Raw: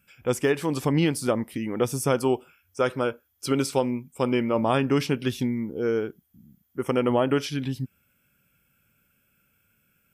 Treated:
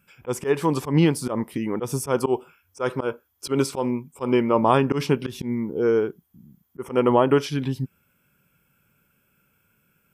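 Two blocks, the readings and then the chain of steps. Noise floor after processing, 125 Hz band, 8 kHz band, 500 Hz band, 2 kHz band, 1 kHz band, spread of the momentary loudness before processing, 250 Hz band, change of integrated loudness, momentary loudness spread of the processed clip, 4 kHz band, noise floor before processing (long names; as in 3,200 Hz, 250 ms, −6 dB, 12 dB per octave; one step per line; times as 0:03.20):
−68 dBFS, +2.5 dB, 0.0 dB, +2.5 dB, −0.5 dB, +4.5 dB, 9 LU, +2.0 dB, +2.5 dB, 11 LU, −1.0 dB, −69 dBFS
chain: graphic EQ with 15 bands 160 Hz +5 dB, 400 Hz +6 dB, 1,000 Hz +9 dB
volume swells 103 ms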